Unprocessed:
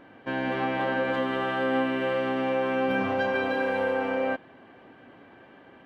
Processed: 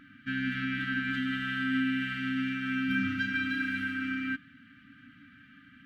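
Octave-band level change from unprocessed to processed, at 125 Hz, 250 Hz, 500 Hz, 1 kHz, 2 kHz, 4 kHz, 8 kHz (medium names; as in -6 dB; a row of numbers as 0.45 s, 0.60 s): 0.0 dB, -0.5 dB, under -40 dB, -15.0 dB, 0.0 dB, 0.0 dB, no reading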